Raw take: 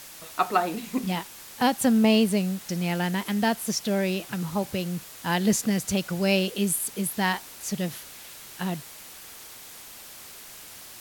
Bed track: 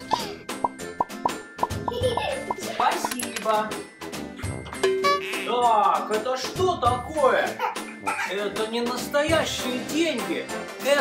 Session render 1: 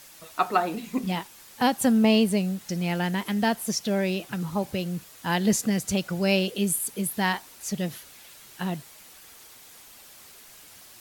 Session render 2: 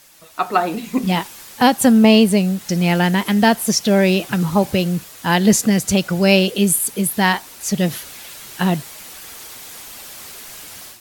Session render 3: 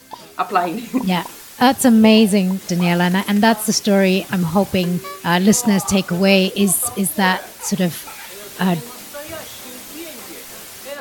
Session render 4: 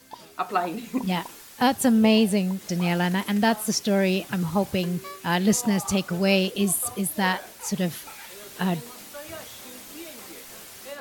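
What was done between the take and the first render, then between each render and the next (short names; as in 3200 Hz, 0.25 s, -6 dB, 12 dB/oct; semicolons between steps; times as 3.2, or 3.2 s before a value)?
denoiser 6 dB, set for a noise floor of -45 dBFS
AGC gain up to 13 dB
add bed track -11 dB
gain -7.5 dB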